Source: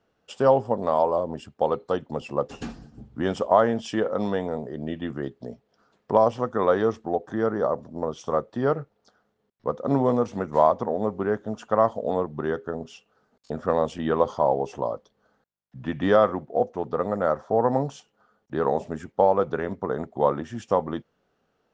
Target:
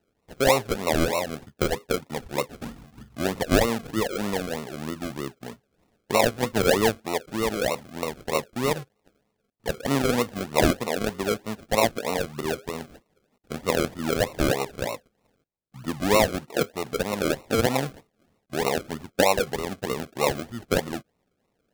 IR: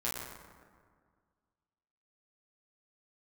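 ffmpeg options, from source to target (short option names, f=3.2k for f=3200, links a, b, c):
-filter_complex "[0:a]asettb=1/sr,asplit=3[a][b][c];[a]atrim=end=6.404[d];[b]atrim=start=6.4:end=6.93,asetpts=PTS-STARTPTS,afade=t=in:d=0.004:c=qsin,afade=t=out:st=0.526:d=0.004:c=qsin,tiltshelf=f=870:g=4.5[e];[c]atrim=start=6.926[f];[d][e]acrossfade=d=0.004:c1=hsin:c2=qsin[g];[g][f]acrossfade=d=0.004:c1=qsin:c2=hsin,acrusher=samples=38:mix=1:aa=0.000001:lfo=1:lforange=22.8:lforate=3.2,volume=-1.5dB"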